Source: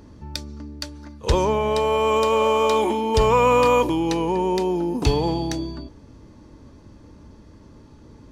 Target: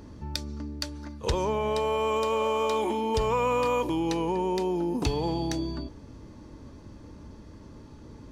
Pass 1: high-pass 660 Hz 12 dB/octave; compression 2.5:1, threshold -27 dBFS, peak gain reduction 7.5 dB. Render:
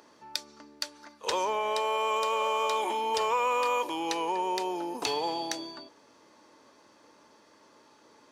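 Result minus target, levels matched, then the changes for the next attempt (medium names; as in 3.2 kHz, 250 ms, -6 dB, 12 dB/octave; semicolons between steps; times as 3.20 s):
500 Hz band -3.0 dB
remove: high-pass 660 Hz 12 dB/octave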